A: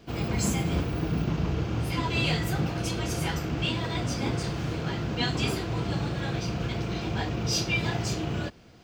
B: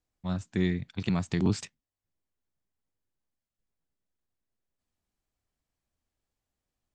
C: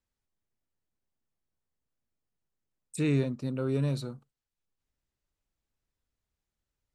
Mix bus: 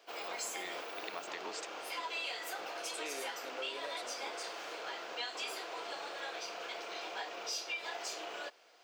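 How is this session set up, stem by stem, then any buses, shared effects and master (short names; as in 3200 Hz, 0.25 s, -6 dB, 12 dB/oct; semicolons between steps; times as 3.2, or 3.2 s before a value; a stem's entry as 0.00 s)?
-4.0 dB, 0.00 s, no send, dry
-4.0 dB, 0.00 s, no send, dry
-2.5 dB, 0.00 s, no send, dry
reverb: off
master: HPF 520 Hz 24 dB/oct; compressor 4:1, threshold -37 dBFS, peak gain reduction 8 dB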